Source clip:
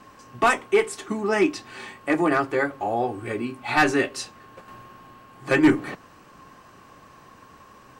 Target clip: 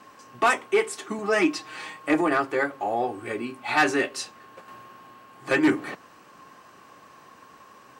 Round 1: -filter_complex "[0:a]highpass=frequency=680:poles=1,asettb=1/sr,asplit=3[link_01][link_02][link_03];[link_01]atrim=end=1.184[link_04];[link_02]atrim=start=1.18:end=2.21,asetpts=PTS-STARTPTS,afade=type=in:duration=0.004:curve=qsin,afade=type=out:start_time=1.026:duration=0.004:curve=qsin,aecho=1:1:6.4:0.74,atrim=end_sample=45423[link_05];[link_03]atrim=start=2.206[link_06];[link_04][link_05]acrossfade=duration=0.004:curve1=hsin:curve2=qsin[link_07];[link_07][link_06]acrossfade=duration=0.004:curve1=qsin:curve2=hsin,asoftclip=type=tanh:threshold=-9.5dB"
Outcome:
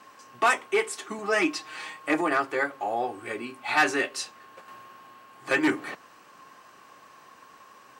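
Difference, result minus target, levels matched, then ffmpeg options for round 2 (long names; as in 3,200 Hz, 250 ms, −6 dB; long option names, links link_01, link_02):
250 Hz band −2.5 dB
-filter_complex "[0:a]highpass=frequency=290:poles=1,asettb=1/sr,asplit=3[link_01][link_02][link_03];[link_01]atrim=end=1.184[link_04];[link_02]atrim=start=1.18:end=2.21,asetpts=PTS-STARTPTS,afade=type=in:duration=0.004:curve=qsin,afade=type=out:start_time=1.026:duration=0.004:curve=qsin,aecho=1:1:6.4:0.74,atrim=end_sample=45423[link_05];[link_03]atrim=start=2.206[link_06];[link_04][link_05]acrossfade=duration=0.004:curve1=hsin:curve2=qsin[link_07];[link_07][link_06]acrossfade=duration=0.004:curve1=qsin:curve2=hsin,asoftclip=type=tanh:threshold=-9.5dB"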